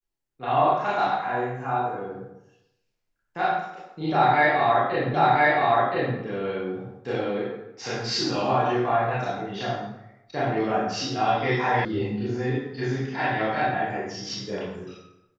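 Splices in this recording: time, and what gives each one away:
5.14 s: repeat of the last 1.02 s
11.85 s: sound stops dead

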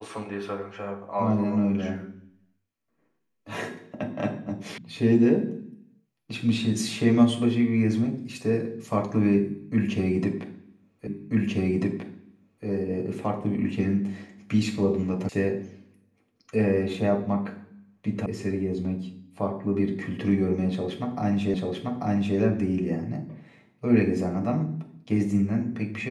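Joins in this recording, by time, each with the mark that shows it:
4.78 s: sound stops dead
11.07 s: repeat of the last 1.59 s
15.29 s: sound stops dead
18.26 s: sound stops dead
21.54 s: repeat of the last 0.84 s

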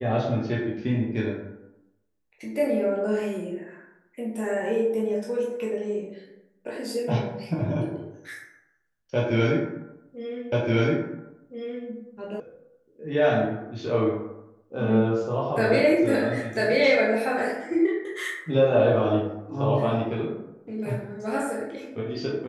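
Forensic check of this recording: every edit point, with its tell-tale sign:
10.52 s: repeat of the last 1.37 s
12.40 s: sound stops dead

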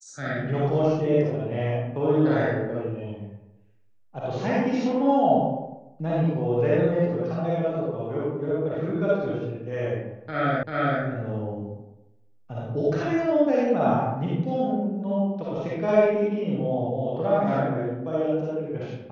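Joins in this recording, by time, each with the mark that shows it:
10.63 s: repeat of the last 0.39 s

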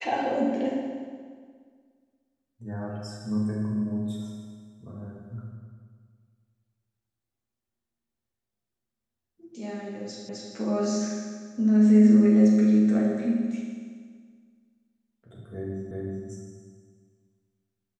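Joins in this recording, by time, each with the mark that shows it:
10.29 s: repeat of the last 0.26 s
15.91 s: repeat of the last 0.37 s

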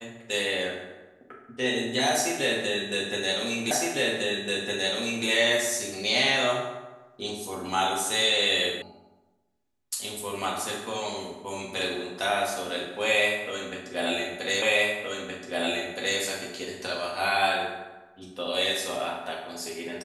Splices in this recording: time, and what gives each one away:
3.71 s: repeat of the last 1.56 s
8.82 s: sound stops dead
14.62 s: repeat of the last 1.57 s

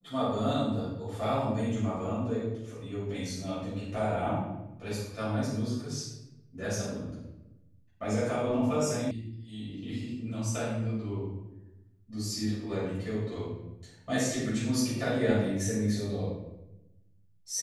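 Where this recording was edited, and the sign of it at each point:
9.11 s: sound stops dead

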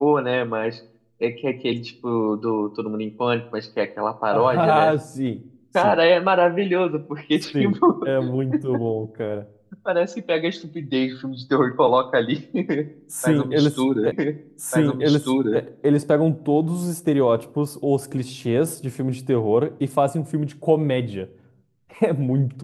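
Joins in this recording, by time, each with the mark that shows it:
14.12 s: repeat of the last 1.49 s

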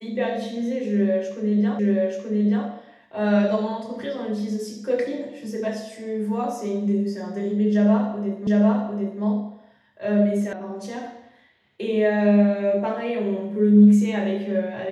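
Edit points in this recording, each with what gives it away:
1.79 s: repeat of the last 0.88 s
8.47 s: repeat of the last 0.75 s
10.53 s: sound stops dead

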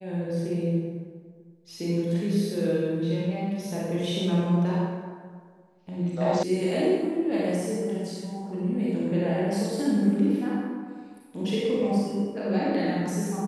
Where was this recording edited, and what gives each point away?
6.43 s: sound stops dead

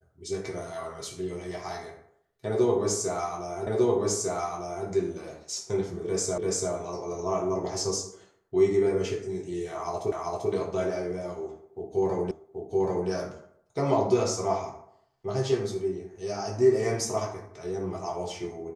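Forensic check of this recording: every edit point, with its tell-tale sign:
3.67 s: repeat of the last 1.2 s
6.38 s: repeat of the last 0.34 s
10.12 s: repeat of the last 0.39 s
12.31 s: repeat of the last 0.78 s

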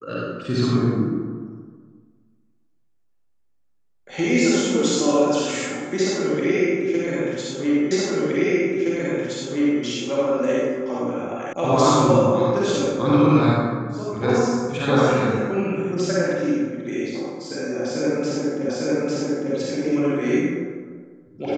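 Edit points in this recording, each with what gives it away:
7.91 s: repeat of the last 1.92 s
11.53 s: sound stops dead
18.69 s: repeat of the last 0.85 s

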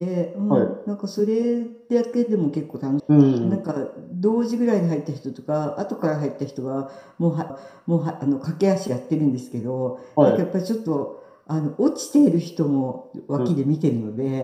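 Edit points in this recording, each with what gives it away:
3.00 s: sound stops dead
7.50 s: repeat of the last 0.68 s

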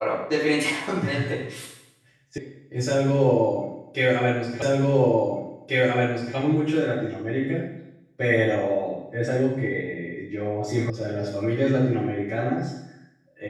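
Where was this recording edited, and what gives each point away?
2.38 s: sound stops dead
4.62 s: repeat of the last 1.74 s
10.90 s: sound stops dead

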